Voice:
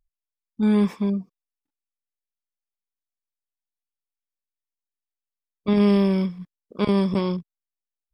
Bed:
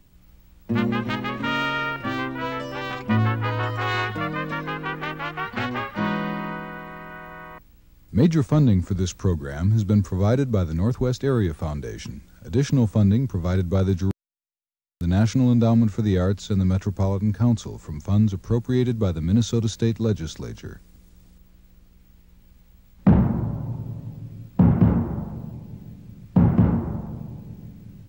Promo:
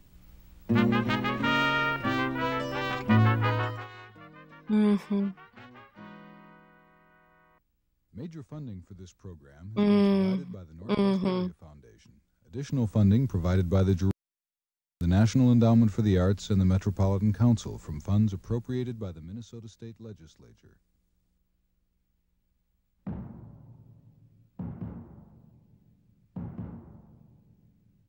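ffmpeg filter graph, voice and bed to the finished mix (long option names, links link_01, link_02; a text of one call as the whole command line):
ffmpeg -i stem1.wav -i stem2.wav -filter_complex "[0:a]adelay=4100,volume=-4.5dB[link_01];[1:a]volume=18.5dB,afade=type=out:start_time=3.5:duration=0.38:silence=0.0841395,afade=type=in:start_time=12.49:duration=0.63:silence=0.105925,afade=type=out:start_time=17.75:duration=1.59:silence=0.11885[link_02];[link_01][link_02]amix=inputs=2:normalize=0" out.wav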